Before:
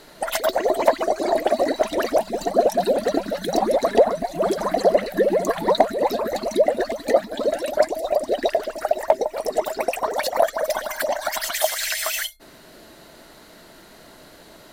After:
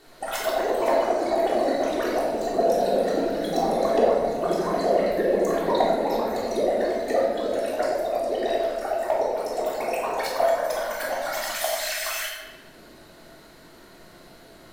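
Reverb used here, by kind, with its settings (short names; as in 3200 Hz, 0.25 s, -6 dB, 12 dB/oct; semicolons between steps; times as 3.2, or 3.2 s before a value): shoebox room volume 900 m³, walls mixed, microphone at 3.4 m; gain -10 dB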